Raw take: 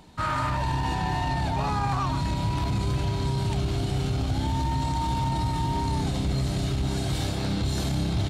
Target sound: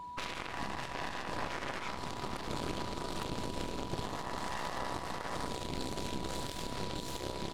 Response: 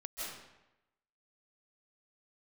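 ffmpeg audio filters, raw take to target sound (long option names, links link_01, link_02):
-af "aeval=exprs='0.178*(cos(1*acos(clip(val(0)/0.178,-1,1)))-cos(1*PI/2))+0.0794*(cos(3*acos(clip(val(0)/0.178,-1,1)))-cos(3*PI/2))+0.00891*(cos(6*acos(clip(val(0)/0.178,-1,1)))-cos(6*PI/2))':channel_layout=same,atempo=1.1,aeval=exprs='val(0)+0.00562*sin(2*PI*980*n/s)':channel_layout=same,alimiter=level_in=1dB:limit=-24dB:level=0:latency=1:release=237,volume=-1dB,volume=2.5dB"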